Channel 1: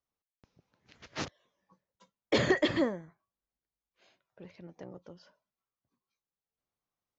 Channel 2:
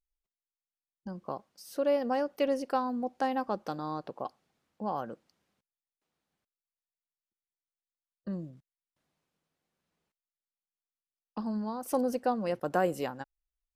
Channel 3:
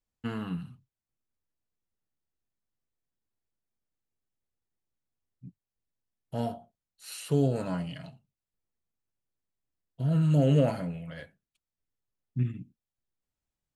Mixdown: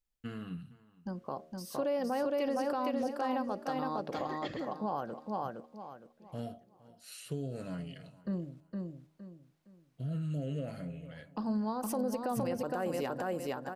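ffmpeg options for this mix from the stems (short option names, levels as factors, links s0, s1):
-filter_complex "[0:a]tremolo=f=0.73:d=0.75,adelay=1800,volume=0.299[s0];[1:a]bandreject=f=78.04:t=h:w=4,bandreject=f=156.08:t=h:w=4,bandreject=f=234.12:t=h:w=4,bandreject=f=312.16:t=h:w=4,bandreject=f=390.2:t=h:w=4,bandreject=f=468.24:t=h:w=4,bandreject=f=546.28:t=h:w=4,bandreject=f=624.32:t=h:w=4,bandreject=f=702.36:t=h:w=4,volume=1.12,asplit=3[s1][s2][s3];[s2]volume=0.668[s4];[2:a]volume=0.447,asplit=2[s5][s6];[s6]volume=0.0794[s7];[s3]apad=whole_len=396082[s8];[s0][s8]sidechaincompress=threshold=0.0126:ratio=8:attack=16:release=277[s9];[s9][s5]amix=inputs=2:normalize=0,equalizer=f=910:t=o:w=0.34:g=-14.5,acompressor=threshold=0.0224:ratio=6,volume=1[s10];[s4][s7]amix=inputs=2:normalize=0,aecho=0:1:463|926|1389|1852:1|0.3|0.09|0.027[s11];[s1][s10][s11]amix=inputs=3:normalize=0,alimiter=level_in=1.06:limit=0.0631:level=0:latency=1:release=87,volume=0.944"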